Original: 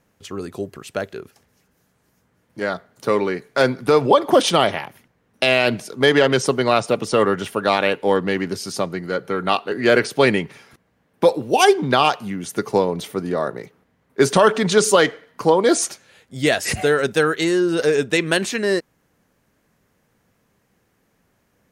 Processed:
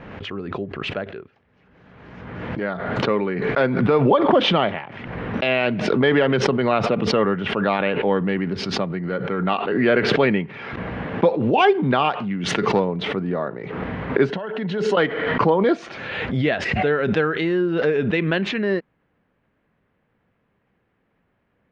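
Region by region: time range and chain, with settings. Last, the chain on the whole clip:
12.30–12.80 s: self-modulated delay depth 0.056 ms + treble shelf 2.8 kHz +11.5 dB
14.29–14.97 s: compression 16:1, threshold -21 dBFS + comb of notches 1.2 kHz
whole clip: low-pass 3 kHz 24 dB/octave; dynamic bell 190 Hz, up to +6 dB, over -36 dBFS, Q 2.2; swell ahead of each attack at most 34 dB/s; trim -3.5 dB

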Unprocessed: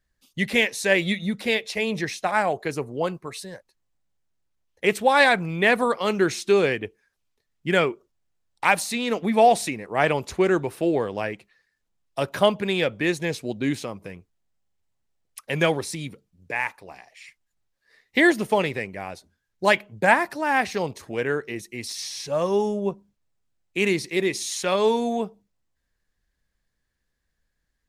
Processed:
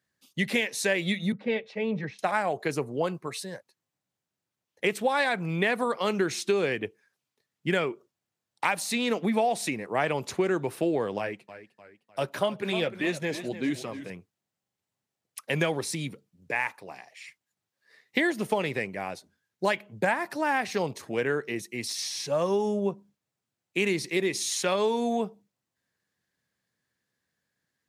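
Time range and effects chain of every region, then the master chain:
1.32–2.19 s: tape spacing loss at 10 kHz 35 dB + comb of notches 350 Hz + three bands expanded up and down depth 40%
11.18–14.10 s: flange 1.5 Hz, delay 0.7 ms, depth 5.6 ms, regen -47% + modulated delay 304 ms, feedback 45%, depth 104 cents, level -13.5 dB
whole clip: high-pass 110 Hz 24 dB/octave; compression 6:1, threshold -22 dBFS

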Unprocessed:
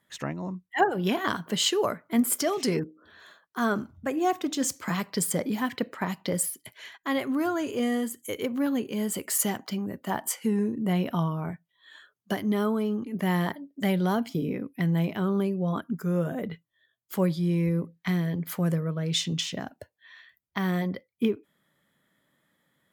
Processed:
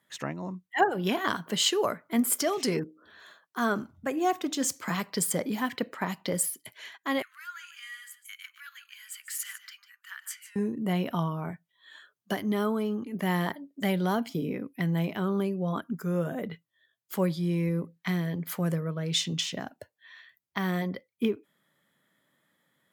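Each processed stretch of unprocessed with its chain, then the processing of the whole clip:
7.22–10.56 s: steep high-pass 1.4 kHz 48 dB/octave + treble shelf 2.8 kHz -9.5 dB + delay 149 ms -13 dB
whole clip: high-pass 89 Hz; bass shelf 410 Hz -3 dB

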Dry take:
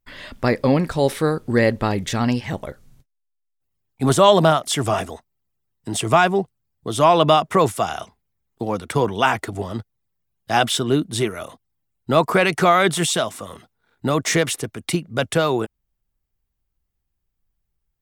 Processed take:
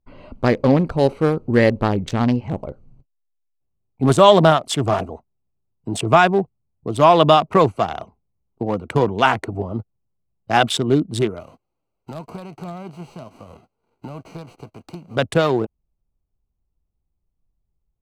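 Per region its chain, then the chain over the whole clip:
11.39–15.15 s: formants flattened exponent 0.3 + compression 3:1, threshold -33 dBFS
whole clip: local Wiener filter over 25 samples; treble shelf 10 kHz -8.5 dB; trim +2.5 dB

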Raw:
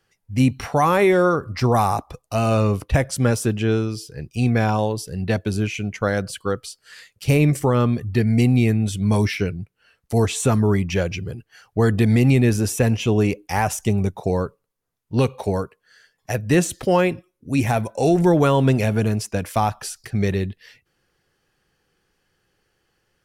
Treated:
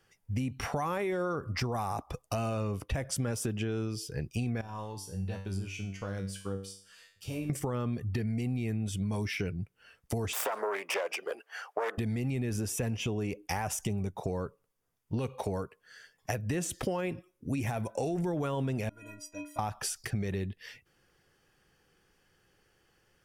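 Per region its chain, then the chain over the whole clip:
4.61–7.50 s: peaking EQ 2 kHz -9 dB 0.36 oct + compression 3:1, threshold -22 dBFS + feedback comb 97 Hz, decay 0.47 s, mix 90%
10.33–11.98 s: self-modulated delay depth 0.29 ms + high-pass 470 Hz 24 dB/octave + peaking EQ 890 Hz +10.5 dB 2.7 oct
18.89–19.59 s: band-stop 230 Hz, Q 6.9 + inharmonic resonator 290 Hz, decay 0.48 s, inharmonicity 0.03
whole clip: peak limiter -13.5 dBFS; band-stop 4.1 kHz, Q 9.4; compression 6:1, threshold -30 dBFS

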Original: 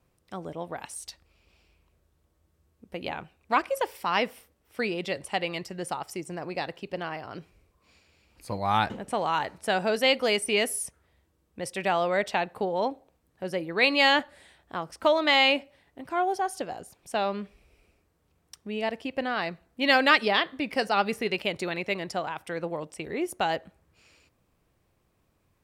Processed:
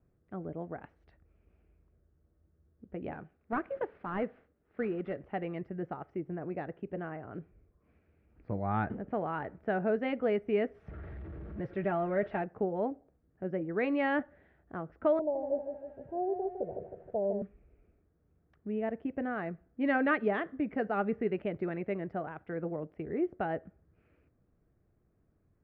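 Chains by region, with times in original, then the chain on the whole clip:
3.14–5.23 s: CVSD coder 32 kbps + bass shelf 120 Hz -7.5 dB
10.74–12.42 s: jump at every zero crossing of -35 dBFS + peaking EQ 5.2 kHz +2.5 dB 1.7 oct + comb of notches 250 Hz
15.19–17.42 s: Chebyshev low-pass 930 Hz, order 8 + comb 1.9 ms, depth 71% + bit-crushed delay 157 ms, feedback 55%, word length 9-bit, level -7.5 dB
whole clip: low-pass 1.5 kHz 24 dB/octave; peaking EQ 980 Hz -13.5 dB 0.86 oct; band-stop 530 Hz, Q 12

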